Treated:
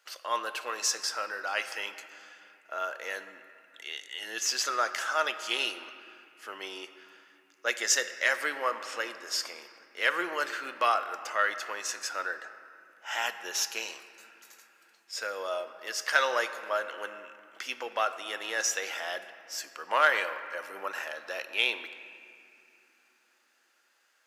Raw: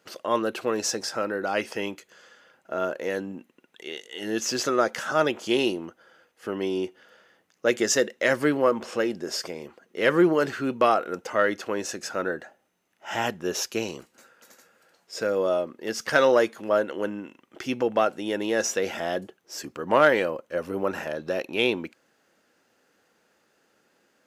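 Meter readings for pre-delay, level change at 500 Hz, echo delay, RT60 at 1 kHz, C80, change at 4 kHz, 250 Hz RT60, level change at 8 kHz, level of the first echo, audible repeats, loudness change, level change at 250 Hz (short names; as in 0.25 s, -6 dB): 3 ms, -12.5 dB, none, 2.7 s, 12.0 dB, 0.0 dB, 4.3 s, 0.0 dB, none, none, -5.0 dB, -21.0 dB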